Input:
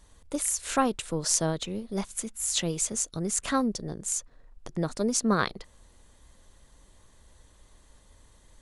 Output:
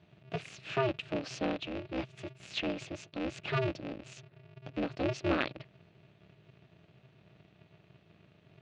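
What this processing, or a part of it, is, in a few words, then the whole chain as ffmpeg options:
ring modulator pedal into a guitar cabinet: -af "aeval=exprs='val(0)*sgn(sin(2*PI*130*n/s))':c=same,highpass=84,equalizer=f=130:t=q:w=4:g=5,equalizer=f=190:t=q:w=4:g=3,equalizer=f=300:t=q:w=4:g=6,equalizer=f=610:t=q:w=4:g=6,equalizer=f=960:t=q:w=4:g=-5,equalizer=f=2.6k:t=q:w=4:g=10,lowpass=f=4.1k:w=0.5412,lowpass=f=4.1k:w=1.3066,volume=-7.5dB"

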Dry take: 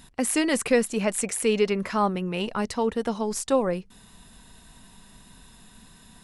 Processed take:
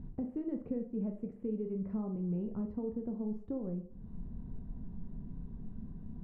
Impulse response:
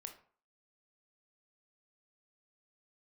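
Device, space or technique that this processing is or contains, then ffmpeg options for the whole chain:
television next door: -filter_complex "[0:a]acompressor=threshold=-43dB:ratio=3,lowpass=250[a];[1:a]atrim=start_sample=2205[b];[a][b]afir=irnorm=-1:irlink=0,volume=15dB"

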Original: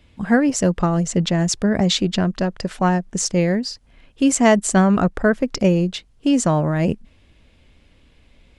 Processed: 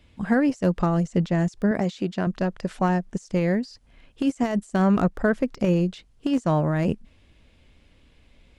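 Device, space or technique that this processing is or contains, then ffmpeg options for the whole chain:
de-esser from a sidechain: -filter_complex "[0:a]asplit=2[a][b];[b]highpass=6.3k,apad=whole_len=378593[c];[a][c]sidechaincompress=threshold=-44dB:ratio=16:attack=1:release=28,asettb=1/sr,asplit=3[d][e][f];[d]atrim=end=1.714[g];[e]atrim=start=1.71:end=2.27,asetpts=PTS-STARTPTS,afade=t=in:d=0.004:c=qsin,afade=t=out:st=0.556:d=0.004:c=qsin,highpass=f=240:p=1[h];[f]atrim=start=2.266[i];[g][h]acrossfade=d=0.004:c1=hsin:c2=qsin[j];[j][i]acrossfade=d=0.004:c1=qsin:c2=hsin,volume=-3dB"

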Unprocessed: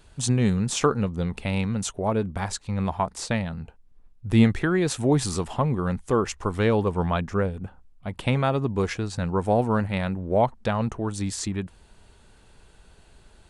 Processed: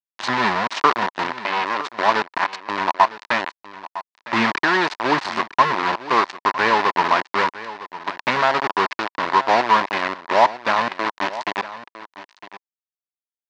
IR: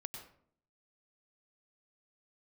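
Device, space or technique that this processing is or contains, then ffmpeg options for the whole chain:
hand-held game console: -filter_complex "[0:a]acrusher=bits=3:mix=0:aa=0.000001,highpass=420,equalizer=f=480:t=q:w=4:g=-9,equalizer=f=990:t=q:w=4:g=10,equalizer=f=1.8k:t=q:w=4:g=5,equalizer=f=3.3k:t=q:w=4:g=-4,lowpass=f=4.4k:w=0.5412,lowpass=f=4.4k:w=1.3066,asettb=1/sr,asplit=3[a][b][c];[a]atrim=end=1.314[d];[b]atrim=start=1.31:end=1.86,asetpts=PTS-STARTPTS,afade=t=in:d=0.004:c=qsin,afade=t=out:st=0.546:d=0.004:c=qsin,bass=f=250:g=-9,treble=f=4k:g=-4[e];[c]atrim=start=1.856[f];[d][e]acrossfade=d=0.004:c1=hsin:c2=qsin[g];[g][f]acrossfade=d=0.004:c1=qsin:c2=hsin,aecho=1:1:957:0.168,volume=5.5dB"

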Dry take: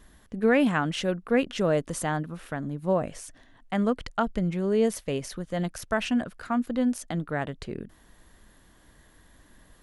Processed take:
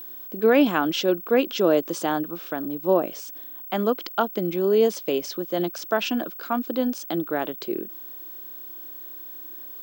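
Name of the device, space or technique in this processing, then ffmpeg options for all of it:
old television with a line whistle: -af "highpass=f=220:w=0.5412,highpass=f=220:w=1.3066,equalizer=f=240:t=q:w=4:g=-5,equalizer=f=340:t=q:w=4:g=9,equalizer=f=1.9k:t=q:w=4:g=-8,equalizer=f=3.4k:t=q:w=4:g=4,equalizer=f=5.1k:t=q:w=4:g=5,lowpass=f=7.2k:w=0.5412,lowpass=f=7.2k:w=1.3066,aeval=exprs='val(0)+0.01*sin(2*PI*15734*n/s)':c=same,volume=4dB"

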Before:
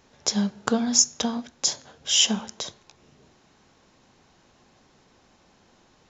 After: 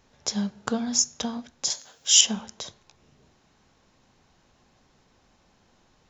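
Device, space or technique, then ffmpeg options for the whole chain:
low shelf boost with a cut just above: -filter_complex "[0:a]lowshelf=f=76:g=8,equalizer=f=350:t=o:w=0.77:g=-2,asettb=1/sr,asplit=3[a][b][c];[a]atrim=end=1.704[d];[b]atrim=start=1.7:end=2.21,asetpts=PTS-STARTPTS,afade=t=in:d=0.004:c=qsin,afade=t=out:st=0.506:d=0.004:c=qsin,aemphasis=mode=production:type=riaa[e];[c]atrim=start=2.206[f];[d][e]acrossfade=d=0.004:c1=hsin:c2=qsin[g];[g][f]acrossfade=d=0.004:c1=qsin:c2=hsin,volume=-4dB"

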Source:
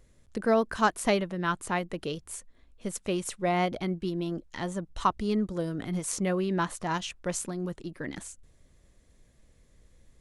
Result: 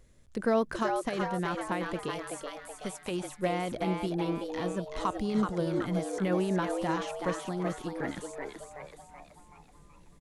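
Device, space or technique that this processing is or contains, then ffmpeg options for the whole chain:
de-esser from a sidechain: -filter_complex "[0:a]asplit=2[a][b];[b]highpass=4.4k,apad=whole_len=449904[c];[a][c]sidechaincompress=threshold=-46dB:ratio=5:attack=1.4:release=53,asettb=1/sr,asplit=3[d][e][f];[d]atrim=end=2.114[g];[e]atrim=start=2.11:end=3.11,asetpts=PTS-STARTPTS,afade=t=in:d=0.004:c=qsin,afade=t=out:st=0.996:d=0.004:c=qsin,tiltshelf=f=750:g=-4.5[h];[f]atrim=start=3.106[i];[g][h]acrossfade=d=0.004:c1=hsin:c2=qsin[j];[j][i]acrossfade=d=0.004:c1=qsin:c2=hsin,asplit=7[k][l][m][n][o][p][q];[l]adelay=378,afreqshift=140,volume=-5dB[r];[m]adelay=756,afreqshift=280,volume=-11dB[s];[n]adelay=1134,afreqshift=420,volume=-17dB[t];[o]adelay=1512,afreqshift=560,volume=-23.1dB[u];[p]adelay=1890,afreqshift=700,volume=-29.1dB[v];[q]adelay=2268,afreqshift=840,volume=-35.1dB[w];[k][r][s][t][u][v][w]amix=inputs=7:normalize=0"

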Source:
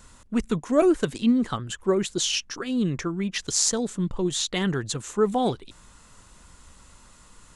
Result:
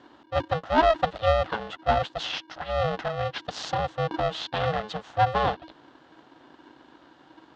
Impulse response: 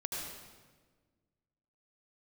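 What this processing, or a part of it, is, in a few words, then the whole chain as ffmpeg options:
ring modulator pedal into a guitar cabinet: -filter_complex "[0:a]asplit=3[a][b][c];[a]afade=t=out:st=2.15:d=0.02[d];[b]equalizer=f=200:w=0.52:g=-6,afade=t=in:st=2.15:d=0.02,afade=t=out:st=2.68:d=0.02[e];[c]afade=t=in:st=2.68:d=0.02[f];[d][e][f]amix=inputs=3:normalize=0,aeval=exprs='val(0)*sgn(sin(2*PI*320*n/s))':c=same,highpass=79,equalizer=f=100:t=q:w=4:g=-9,equalizer=f=200:t=q:w=4:g=-4,equalizer=f=370:t=q:w=4:g=-6,equalizer=f=770:t=q:w=4:g=4,equalizer=f=2.3k:t=q:w=4:g=-10,lowpass=f=3.6k:w=0.5412,lowpass=f=3.6k:w=1.3066"

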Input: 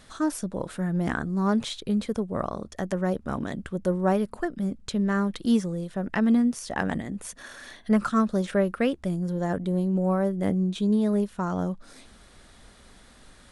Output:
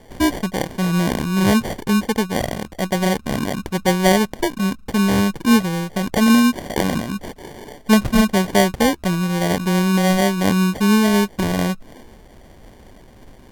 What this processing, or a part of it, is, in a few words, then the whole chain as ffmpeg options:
crushed at another speed: -af "asetrate=55125,aresample=44100,acrusher=samples=27:mix=1:aa=0.000001,asetrate=35280,aresample=44100,volume=8dB"

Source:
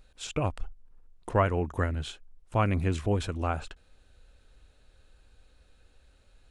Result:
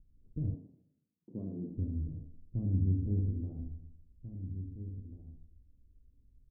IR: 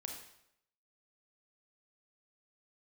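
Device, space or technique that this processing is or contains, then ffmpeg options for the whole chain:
next room: -filter_complex "[0:a]lowpass=f=270:w=0.5412,lowpass=f=270:w=1.3066[a];[1:a]atrim=start_sample=2205[b];[a][b]afir=irnorm=-1:irlink=0,asettb=1/sr,asplit=3[c][d][e];[c]atrim=end=0.544[f];[d]atrim=start=0.54:end=1.77,asetpts=PTS-STARTPTS,afade=t=in:d=0.004:c=qsin,afade=t=out:st=1.226:d=0.004:c=qsin,highpass=f=160:w=0.5412,highpass=f=160:w=1.3066[g];[e]atrim=start=1.766[h];[f][g]acrossfade=d=0.004:c1=hsin:c2=qsin[i];[i][h]acrossfade=d=0.004:c1=qsin:c2=hsin,asplit=2[j][k];[k]adelay=1691,volume=-11dB,highshelf=f=4k:g=-38[l];[j][l]amix=inputs=2:normalize=0"

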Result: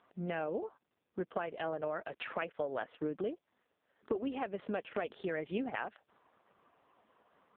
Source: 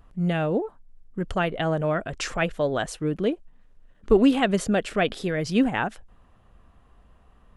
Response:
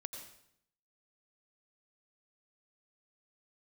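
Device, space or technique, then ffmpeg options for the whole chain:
voicemail: -filter_complex "[0:a]asettb=1/sr,asplit=3[a][b][c];[a]atrim=end=3.184[d];[b]atrim=start=3.18:end=4.75,asetpts=PTS-STARTPTS,afade=t=in:d=0.004:c=qsin,afade=t=out:st=1.566:d=0.004:c=qsin,lowshelf=f=170:g=-2.5[e];[c]atrim=start=4.746[f];[d][e]acrossfade=d=0.004:c1=hsin:c2=qsin[g];[g][f]acrossfade=d=0.004:c1=qsin:c2=hsin,highpass=350,lowpass=3k,acompressor=threshold=-32dB:ratio=10" -ar 8000 -c:a libopencore_amrnb -b:a 4750

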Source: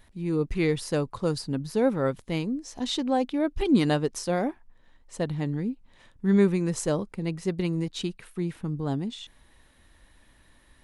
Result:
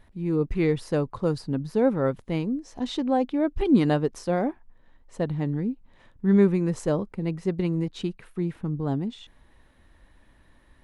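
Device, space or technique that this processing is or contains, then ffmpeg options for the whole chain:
through cloth: -af "highshelf=f=2.9k:g=-12,volume=2dB"

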